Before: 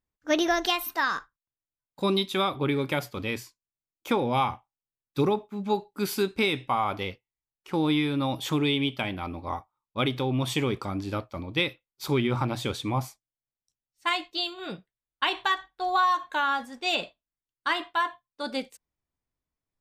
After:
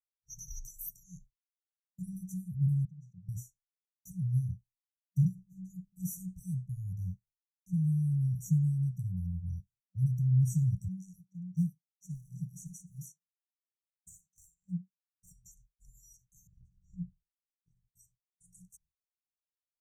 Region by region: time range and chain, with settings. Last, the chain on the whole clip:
2.85–3.29 s: vowel filter i + distance through air 110 m + level flattener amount 50%
10.88–15.32 s: steep high-pass 160 Hz 72 dB/octave + level-controlled noise filter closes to 2.3 kHz, open at -26.5 dBFS + phaser 1.3 Hz, delay 3.5 ms, feedback 44%
16.47–17.88 s: low-pass 1.6 kHz + bass shelf 390 Hz +8 dB
whole clip: FFT band-reject 190–5700 Hz; expander -60 dBFS; treble shelf 2.5 kHz -11.5 dB; trim +5.5 dB

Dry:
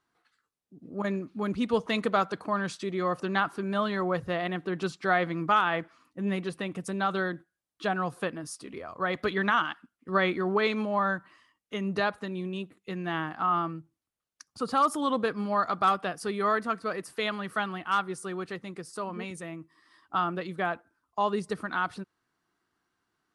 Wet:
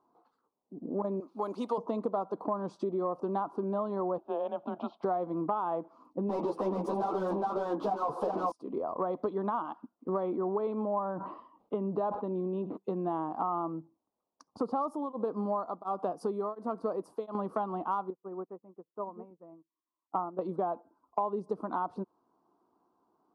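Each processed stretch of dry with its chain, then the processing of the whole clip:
1.20–1.78 s: high-pass 370 Hz 6 dB/octave + tilt EQ +4 dB/octave
4.18–5.03 s: frequency shift -160 Hz + cabinet simulation 430–3500 Hz, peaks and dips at 470 Hz -8 dB, 680 Hz +10 dB, 1 kHz -8 dB, 1.9 kHz -7 dB, 3.2 kHz +7 dB
6.29–8.52 s: delay 416 ms -5 dB + overdrive pedal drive 34 dB, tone 4.5 kHz, clips at -15.5 dBFS + three-phase chorus
10.23–12.77 s: low-pass 3.6 kHz 24 dB/octave + decay stretcher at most 96 dB/s
14.77–17.35 s: treble shelf 8.7 kHz +11 dB + tremolo of two beating tones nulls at 1.4 Hz
18.10–20.39 s: low-pass 2 kHz 24 dB/octave + upward expansion 2.5:1, over -49 dBFS
whole clip: FFT filter 130 Hz 0 dB, 230 Hz +10 dB, 1 kHz +12 dB, 1.8 kHz -21 dB, 5 kHz -11 dB, 7.8 kHz -17 dB; compression 6:1, threshold -29 dBFS; bass shelf 120 Hz -8 dB

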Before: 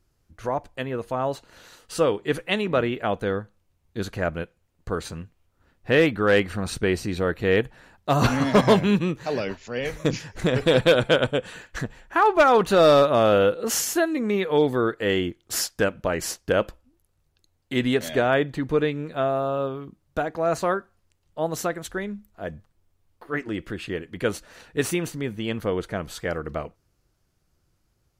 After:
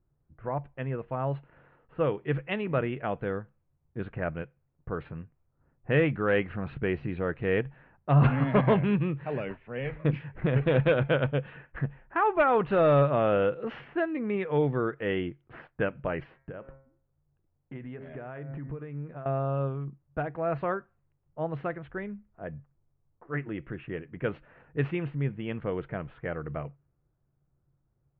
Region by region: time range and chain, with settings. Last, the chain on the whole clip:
16.23–19.26 s: de-hum 134.6 Hz, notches 17 + compression, threshold -32 dBFS
whole clip: steep low-pass 2.8 kHz 36 dB/octave; level-controlled noise filter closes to 1.1 kHz, open at -19 dBFS; peaking EQ 140 Hz +14 dB 0.24 oct; trim -6.5 dB

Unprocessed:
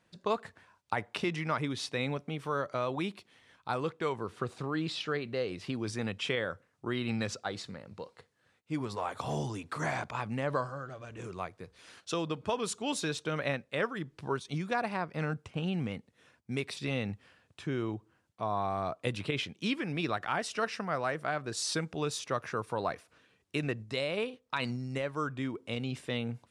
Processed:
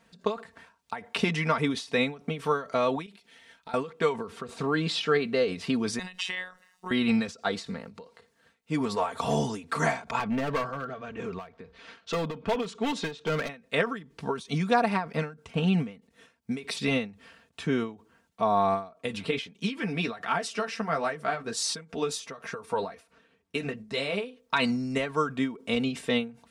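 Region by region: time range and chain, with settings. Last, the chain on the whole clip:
3.06–3.74 s: bass shelf 500 Hz -6.5 dB + band-stop 1.1 kHz, Q 5.4 + compression 4:1, threshold -48 dBFS
5.99–6.91 s: tilt shelf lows -9 dB, about 700 Hz + compression 3:1, threshold -37 dBFS + robot voice 183 Hz
10.19–13.49 s: low-pass 3.4 kHz + hard clipper -32 dBFS
18.89–24.24 s: flange 1.4 Hz, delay 4.4 ms, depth 7.7 ms, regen -30% + tape noise reduction on one side only decoder only
whole clip: comb 4.4 ms, depth 69%; endings held to a fixed fall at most 160 dB/s; trim +6.5 dB

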